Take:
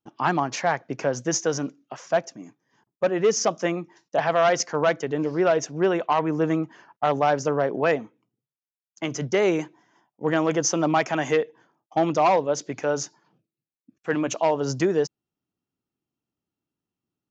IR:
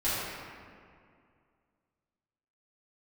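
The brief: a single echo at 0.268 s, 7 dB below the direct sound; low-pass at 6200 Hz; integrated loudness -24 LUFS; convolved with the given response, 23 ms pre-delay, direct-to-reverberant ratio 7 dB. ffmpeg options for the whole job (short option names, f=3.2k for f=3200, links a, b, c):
-filter_complex "[0:a]lowpass=6.2k,aecho=1:1:268:0.447,asplit=2[a][b];[1:a]atrim=start_sample=2205,adelay=23[c];[b][c]afir=irnorm=-1:irlink=0,volume=-17.5dB[d];[a][d]amix=inputs=2:normalize=0,volume=-1dB"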